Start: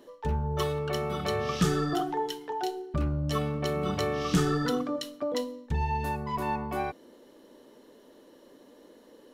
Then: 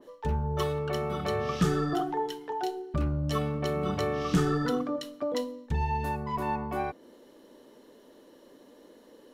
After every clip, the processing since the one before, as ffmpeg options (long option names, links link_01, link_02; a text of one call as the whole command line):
ffmpeg -i in.wav -af "adynamicequalizer=threshold=0.00501:dfrequency=2300:dqfactor=0.7:tfrequency=2300:tqfactor=0.7:attack=5:release=100:ratio=0.375:range=2.5:mode=cutabove:tftype=highshelf" out.wav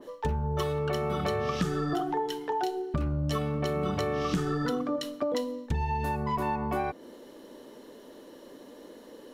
ffmpeg -i in.wav -af "acompressor=threshold=-32dB:ratio=6,volume=6dB" out.wav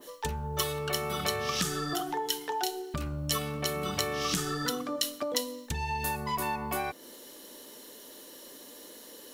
ffmpeg -i in.wav -af "crystalizer=i=9:c=0,volume=-6dB" out.wav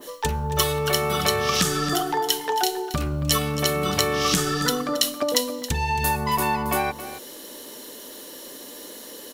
ffmpeg -i in.wav -af "aecho=1:1:273:0.224,volume=8.5dB" out.wav